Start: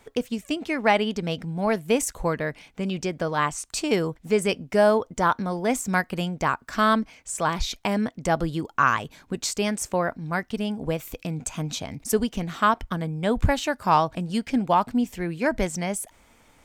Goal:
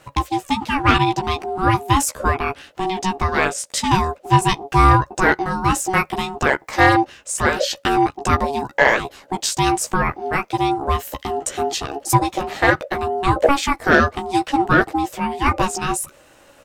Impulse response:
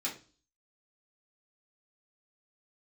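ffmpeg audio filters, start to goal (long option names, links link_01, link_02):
-filter_complex "[0:a]asplit=2[link_01][link_02];[link_02]adelay=14,volume=-4dB[link_03];[link_01][link_03]amix=inputs=2:normalize=0,aeval=exprs='val(0)*sin(2*PI*560*n/s)':channel_layout=same,acontrast=87,volume=1dB"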